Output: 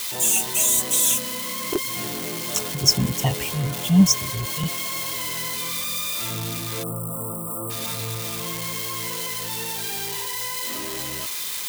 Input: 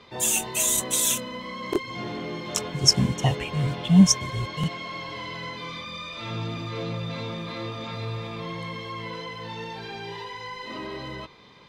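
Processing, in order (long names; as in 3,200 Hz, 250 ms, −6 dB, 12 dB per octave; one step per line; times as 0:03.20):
spike at every zero crossing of −19 dBFS
time-frequency box erased 0:06.83–0:07.70, 1,400–7,600 Hz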